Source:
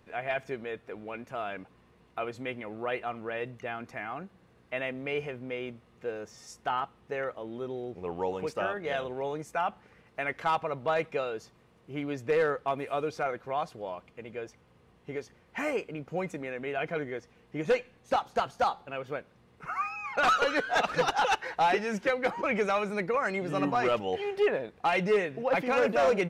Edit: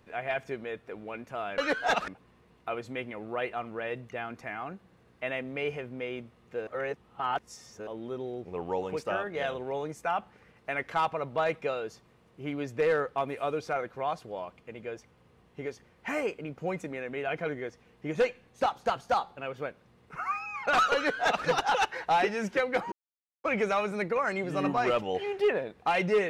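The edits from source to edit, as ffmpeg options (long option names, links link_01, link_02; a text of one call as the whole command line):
ffmpeg -i in.wav -filter_complex "[0:a]asplit=6[link_01][link_02][link_03][link_04][link_05][link_06];[link_01]atrim=end=1.582[link_07];[link_02]atrim=start=20.448:end=20.952[link_08];[link_03]atrim=start=1.578:end=6.172[link_09];[link_04]atrim=start=6.168:end=7.372,asetpts=PTS-STARTPTS,areverse[link_10];[link_05]atrim=start=7.368:end=22.42,asetpts=PTS-STARTPTS,afade=type=out:start_time=15.048:duration=0.004:curve=hsin,apad=pad_dur=0.52[link_11];[link_06]atrim=start=22.42,asetpts=PTS-STARTPTS,afade=type=in:duration=0.004:curve=hsin[link_12];[link_07][link_08]acrossfade=duration=0.004:curve1=hsin:curve2=hsin[link_13];[link_13][link_09]acrossfade=duration=0.004:curve1=hsin:curve2=hsin[link_14];[link_14][link_10]acrossfade=duration=0.004:curve1=hsin:curve2=hsin[link_15];[link_11][link_12]concat=n=2:v=0:a=1[link_16];[link_15][link_16]acrossfade=duration=0.004:curve1=hsin:curve2=hsin" out.wav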